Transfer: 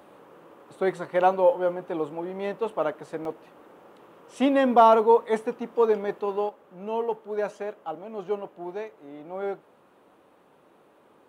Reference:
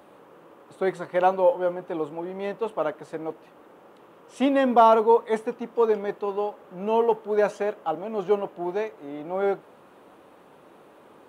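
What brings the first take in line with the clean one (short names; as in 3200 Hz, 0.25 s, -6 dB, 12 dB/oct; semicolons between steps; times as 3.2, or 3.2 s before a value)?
interpolate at 3.25/3.84, 1.7 ms; gain 0 dB, from 6.49 s +6.5 dB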